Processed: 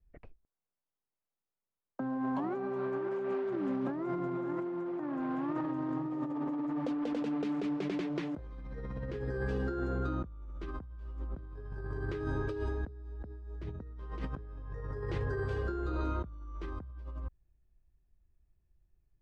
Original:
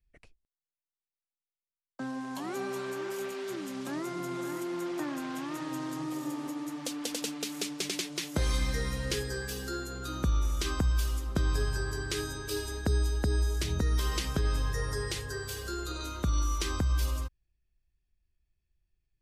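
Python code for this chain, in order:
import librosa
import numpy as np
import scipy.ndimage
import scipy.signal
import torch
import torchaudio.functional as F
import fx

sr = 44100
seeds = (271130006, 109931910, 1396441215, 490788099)

y = scipy.signal.sosfilt(scipy.signal.butter(2, 1100.0, 'lowpass', fs=sr, output='sos'), x)
y = fx.over_compress(y, sr, threshold_db=-39.0, ratio=-1.0)
y = y * 10.0 ** (1.5 / 20.0)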